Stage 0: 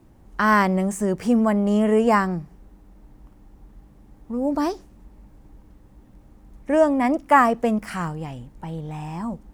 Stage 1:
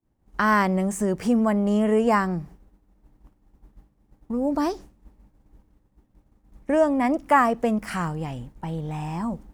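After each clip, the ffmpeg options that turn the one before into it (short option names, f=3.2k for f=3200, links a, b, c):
-filter_complex "[0:a]agate=range=-33dB:threshold=-38dB:ratio=3:detection=peak,asplit=2[a][b];[b]acompressor=threshold=-27dB:ratio=6,volume=1dB[c];[a][c]amix=inputs=2:normalize=0,volume=-4.5dB"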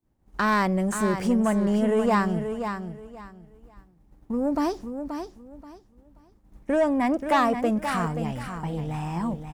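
-filter_complex "[0:a]asoftclip=type=tanh:threshold=-15dB,asplit=2[a][b];[b]aecho=0:1:530|1060|1590:0.398|0.0916|0.0211[c];[a][c]amix=inputs=2:normalize=0"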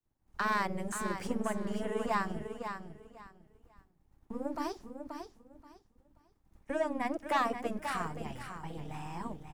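-filter_complex "[0:a]acrossover=split=240|570|1800[a][b][c][d];[a]aeval=exprs='max(val(0),0)':c=same[e];[b]aeval=exprs='val(0)*sin(2*PI*20*n/s)':c=same[f];[e][f][c][d]amix=inputs=4:normalize=0,volume=-7dB"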